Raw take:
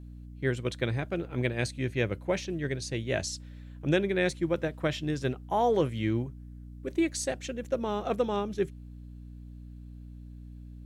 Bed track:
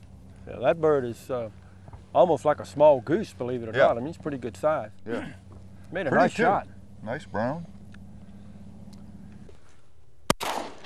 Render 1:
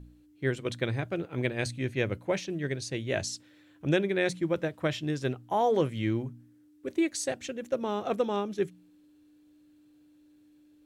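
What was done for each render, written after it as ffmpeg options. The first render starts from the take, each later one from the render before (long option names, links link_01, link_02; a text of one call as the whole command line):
ffmpeg -i in.wav -af "bandreject=frequency=60:width_type=h:width=4,bandreject=frequency=120:width_type=h:width=4,bandreject=frequency=180:width_type=h:width=4,bandreject=frequency=240:width_type=h:width=4" out.wav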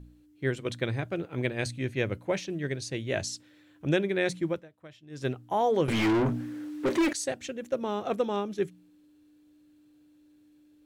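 ffmpeg -i in.wav -filter_complex "[0:a]asettb=1/sr,asplit=3[link_01][link_02][link_03];[link_01]atrim=end=5.884[link_04];[link_02]atrim=start=5.88:end=7.13,asetpts=PTS-STARTPTS,afade=type=in:duration=0.004:curve=qsin,afade=type=out:start_time=1.246:duration=0.004:curve=qsin,asplit=2[link_05][link_06];[link_06]highpass=frequency=720:poles=1,volume=37dB,asoftclip=type=tanh:threshold=-17.5dB[link_07];[link_05][link_07]amix=inputs=2:normalize=0,lowpass=frequency=1900:poles=1,volume=-6dB[link_08];[link_03]atrim=start=7.126[link_09];[link_04][link_08]acrossfade=duration=0.004:curve1=hsin:curve2=qsin[link_10];[link_10][link_09]acrossfade=duration=0.004:curve1=qsin:curve2=hsin,asplit=3[link_11][link_12][link_13];[link_11]atrim=end=4.64,asetpts=PTS-STARTPTS,afade=type=out:start_time=4.49:duration=0.15:silence=0.1[link_14];[link_12]atrim=start=4.64:end=5.1,asetpts=PTS-STARTPTS,volume=-20dB[link_15];[link_13]atrim=start=5.1,asetpts=PTS-STARTPTS,afade=type=in:duration=0.15:silence=0.1[link_16];[link_14][link_15][link_16]concat=n=3:v=0:a=1" out.wav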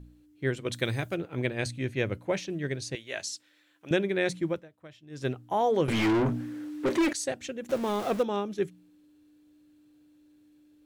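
ffmpeg -i in.wav -filter_complex "[0:a]asplit=3[link_01][link_02][link_03];[link_01]afade=type=out:start_time=0.72:duration=0.02[link_04];[link_02]aemphasis=mode=production:type=75kf,afade=type=in:start_time=0.72:duration=0.02,afade=type=out:start_time=1.14:duration=0.02[link_05];[link_03]afade=type=in:start_time=1.14:duration=0.02[link_06];[link_04][link_05][link_06]amix=inputs=3:normalize=0,asettb=1/sr,asplit=3[link_07][link_08][link_09];[link_07]atrim=end=2.954[link_10];[link_08]atrim=start=2.95:end=3.91,asetpts=PTS-STARTPTS,afade=type=in:duration=0.004:curve=qsin,afade=type=out:start_time=0.956:duration=0.004:curve=qsin,highpass=frequency=1300:poles=1[link_11];[link_09]atrim=start=3.906[link_12];[link_10][link_11]acrossfade=duration=0.004:curve1=hsin:curve2=qsin[link_13];[link_13][link_12]acrossfade=duration=0.004:curve1=qsin:curve2=hsin,asettb=1/sr,asplit=3[link_14][link_15][link_16];[link_14]atrim=end=7.694[link_17];[link_15]atrim=start=7.69:end=8.23,asetpts=PTS-STARTPTS,afade=type=in:duration=0.004:curve=qsin,afade=type=out:start_time=0.536:duration=0.004:curve=qsin,aeval=exprs='val(0)+0.5*0.02*sgn(val(0))':channel_layout=same[link_18];[link_16]atrim=start=8.226[link_19];[link_17][link_18]acrossfade=duration=0.004:curve1=hsin:curve2=qsin[link_20];[link_20][link_19]acrossfade=duration=0.004:curve1=qsin:curve2=hsin" out.wav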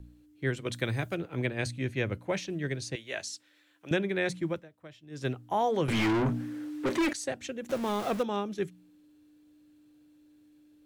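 ffmpeg -i in.wav -filter_complex "[0:a]acrossover=split=350|540|2500[link_01][link_02][link_03][link_04];[link_02]acompressor=threshold=-43dB:ratio=6[link_05];[link_04]alimiter=level_in=4.5dB:limit=-24dB:level=0:latency=1:release=333,volume=-4.5dB[link_06];[link_01][link_05][link_03][link_06]amix=inputs=4:normalize=0" out.wav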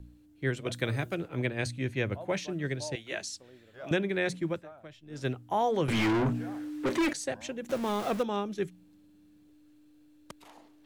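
ffmpeg -i in.wav -i bed.wav -filter_complex "[1:a]volume=-25dB[link_01];[0:a][link_01]amix=inputs=2:normalize=0" out.wav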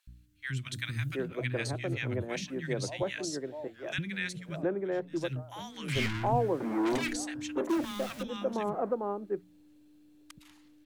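ffmpeg -i in.wav -filter_complex "[0:a]acrossover=split=210|1300[link_01][link_02][link_03];[link_01]adelay=70[link_04];[link_02]adelay=720[link_05];[link_04][link_05][link_03]amix=inputs=3:normalize=0" out.wav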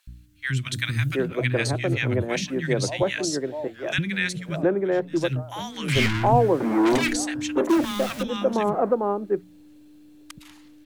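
ffmpeg -i in.wav -af "volume=9.5dB" out.wav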